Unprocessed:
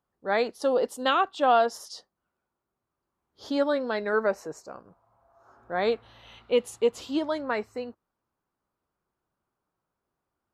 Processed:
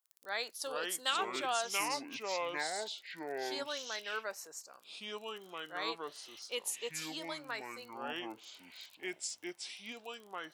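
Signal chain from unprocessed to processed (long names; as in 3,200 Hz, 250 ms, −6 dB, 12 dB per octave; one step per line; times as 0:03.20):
surface crackle 15 per second −44 dBFS
first difference
delay with pitch and tempo change per echo 328 ms, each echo −5 semitones, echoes 2
level +4 dB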